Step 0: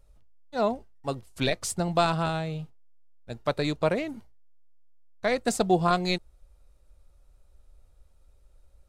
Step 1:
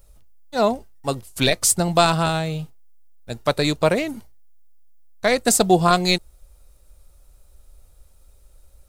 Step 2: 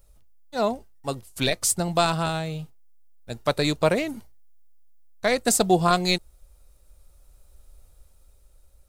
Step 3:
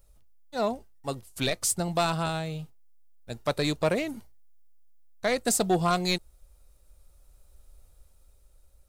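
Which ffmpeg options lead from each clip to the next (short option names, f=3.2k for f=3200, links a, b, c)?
-af "aemphasis=mode=production:type=50kf,volume=6.5dB"
-af "dynaudnorm=f=210:g=11:m=4.5dB,volume=-5dB"
-af "asoftclip=type=tanh:threshold=-12dB,volume=-3dB"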